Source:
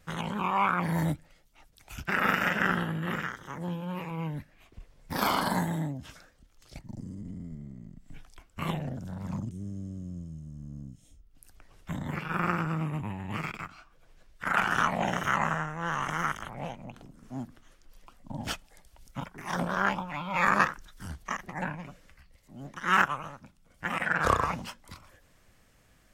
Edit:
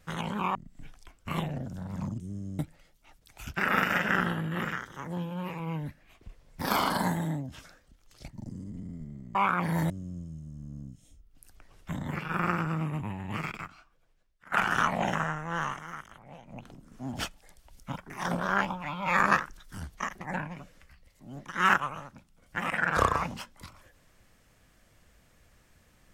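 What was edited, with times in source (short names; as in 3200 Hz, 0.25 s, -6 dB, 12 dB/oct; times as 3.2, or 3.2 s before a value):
0.55–1.1 swap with 7.86–9.9
13.58–14.52 fade out quadratic, to -21 dB
15.15–15.46 cut
15.96–16.87 dip -11.5 dB, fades 0.14 s
17.44–18.41 cut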